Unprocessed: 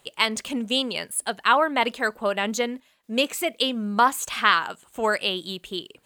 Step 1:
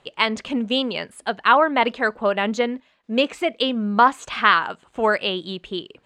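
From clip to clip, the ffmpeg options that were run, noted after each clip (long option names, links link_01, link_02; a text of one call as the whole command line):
ffmpeg -i in.wav -af "lowpass=5500,highshelf=frequency=3900:gain=-10,volume=4.5dB" out.wav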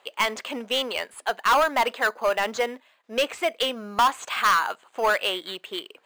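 ffmpeg -i in.wav -filter_complex "[0:a]highpass=570,asplit=2[link_01][link_02];[link_02]acrusher=samples=8:mix=1:aa=0.000001,volume=-10dB[link_03];[link_01][link_03]amix=inputs=2:normalize=0,asoftclip=type=tanh:threshold=-14.5dB" out.wav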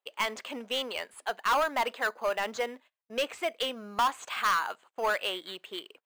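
ffmpeg -i in.wav -af "agate=range=-26dB:threshold=-47dB:ratio=16:detection=peak,volume=-6.5dB" out.wav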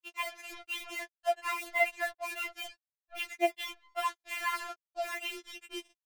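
ffmpeg -i in.wav -af "highpass=390,equalizer=frequency=390:width_type=q:width=4:gain=5,equalizer=frequency=610:width_type=q:width=4:gain=5,equalizer=frequency=950:width_type=q:width=4:gain=-8,equalizer=frequency=1400:width_type=q:width=4:gain=-6,equalizer=frequency=2200:width_type=q:width=4:gain=9,equalizer=frequency=3300:width_type=q:width=4:gain=-4,lowpass=frequency=3400:width=0.5412,lowpass=frequency=3400:width=1.3066,acrusher=bits=5:mix=0:aa=0.5,afftfilt=real='re*4*eq(mod(b,16),0)':imag='im*4*eq(mod(b,16),0)':win_size=2048:overlap=0.75" out.wav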